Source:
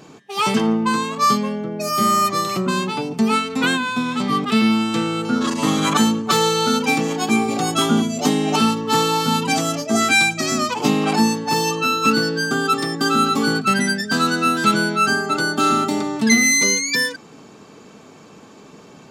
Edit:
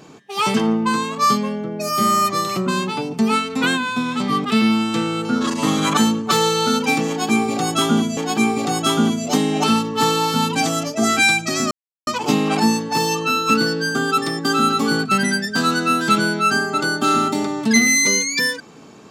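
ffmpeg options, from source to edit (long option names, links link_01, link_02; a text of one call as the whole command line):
ffmpeg -i in.wav -filter_complex "[0:a]asplit=3[link_01][link_02][link_03];[link_01]atrim=end=8.172[link_04];[link_02]atrim=start=7.088:end=10.63,asetpts=PTS-STARTPTS,afade=type=out:start_time=3.538:duration=0.004:curve=hsin,apad=pad_dur=0.36[link_05];[link_03]atrim=start=10.63,asetpts=PTS-STARTPTS,afade=type=in:duration=0.004:curve=hsin[link_06];[link_05][link_06]concat=n=2:v=0:a=1[link_07];[link_04][link_07]acrossfade=duration=0.004:curve1=hsin:curve2=hsin" out.wav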